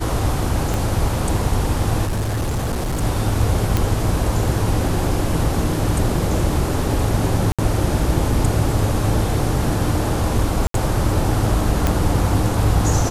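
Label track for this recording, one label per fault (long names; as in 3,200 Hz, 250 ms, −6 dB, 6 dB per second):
0.740000	0.740000	click
2.050000	3.030000	clipping −18 dBFS
3.770000	3.770000	click
7.520000	7.590000	drop-out 66 ms
10.670000	10.740000	drop-out 73 ms
11.870000	11.870000	click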